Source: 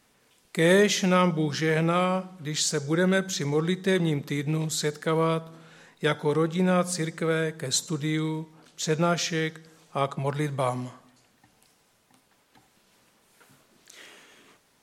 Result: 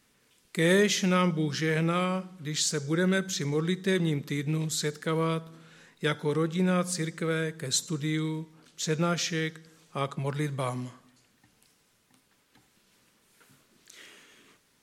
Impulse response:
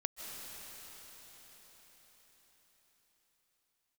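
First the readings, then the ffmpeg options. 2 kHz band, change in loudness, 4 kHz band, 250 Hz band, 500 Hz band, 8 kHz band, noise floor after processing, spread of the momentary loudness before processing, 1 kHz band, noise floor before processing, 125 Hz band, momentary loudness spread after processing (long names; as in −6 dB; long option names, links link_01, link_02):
−2.5 dB, −2.5 dB, −1.5 dB, −2.0 dB, −4.0 dB, −1.5 dB, −68 dBFS, 10 LU, −5.0 dB, −65 dBFS, −1.5 dB, 10 LU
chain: -af "equalizer=frequency=740:width=1.4:gain=-7,volume=-1.5dB"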